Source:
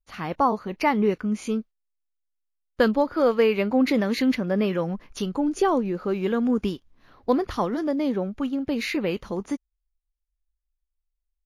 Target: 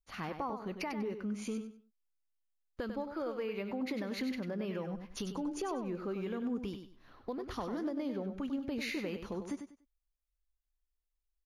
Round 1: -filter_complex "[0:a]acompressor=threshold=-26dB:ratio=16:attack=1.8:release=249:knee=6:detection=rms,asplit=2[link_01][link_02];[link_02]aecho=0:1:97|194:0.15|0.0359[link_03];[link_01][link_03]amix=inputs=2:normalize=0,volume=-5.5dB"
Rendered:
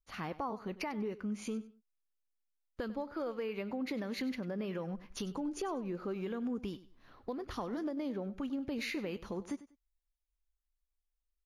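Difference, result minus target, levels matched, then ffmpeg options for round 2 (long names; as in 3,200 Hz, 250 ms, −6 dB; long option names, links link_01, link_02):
echo-to-direct −8.5 dB
-filter_complex "[0:a]acompressor=threshold=-26dB:ratio=16:attack=1.8:release=249:knee=6:detection=rms,asplit=2[link_01][link_02];[link_02]aecho=0:1:97|194|291:0.398|0.0955|0.0229[link_03];[link_01][link_03]amix=inputs=2:normalize=0,volume=-5.5dB"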